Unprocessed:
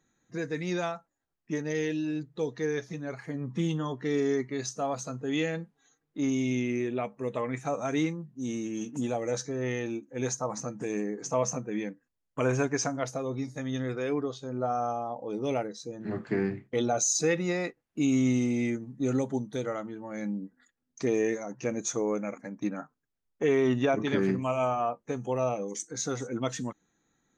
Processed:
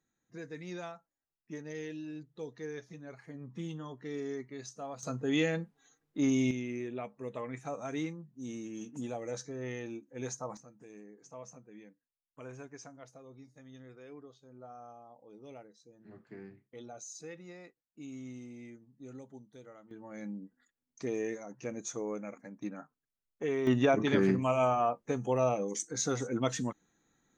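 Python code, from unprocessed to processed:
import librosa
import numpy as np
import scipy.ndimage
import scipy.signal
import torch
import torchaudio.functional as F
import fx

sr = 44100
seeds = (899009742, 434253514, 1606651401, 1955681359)

y = fx.gain(x, sr, db=fx.steps((0.0, -11.0), (5.03, 0.0), (6.51, -8.0), (10.57, -20.0), (19.91, -8.0), (23.67, 0.0)))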